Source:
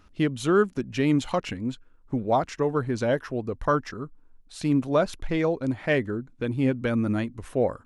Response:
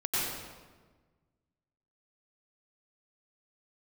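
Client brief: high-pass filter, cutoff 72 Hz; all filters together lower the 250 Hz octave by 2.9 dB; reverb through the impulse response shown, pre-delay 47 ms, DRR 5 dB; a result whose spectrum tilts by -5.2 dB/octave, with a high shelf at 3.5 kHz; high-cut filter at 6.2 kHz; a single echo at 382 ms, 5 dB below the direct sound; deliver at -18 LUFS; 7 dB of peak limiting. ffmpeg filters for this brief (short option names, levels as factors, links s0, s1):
-filter_complex "[0:a]highpass=72,lowpass=6200,equalizer=f=250:t=o:g=-3.5,highshelf=f=3500:g=-6,alimiter=limit=0.126:level=0:latency=1,aecho=1:1:382:0.562,asplit=2[s0][s1];[1:a]atrim=start_sample=2205,adelay=47[s2];[s1][s2]afir=irnorm=-1:irlink=0,volume=0.2[s3];[s0][s3]amix=inputs=2:normalize=0,volume=2.99"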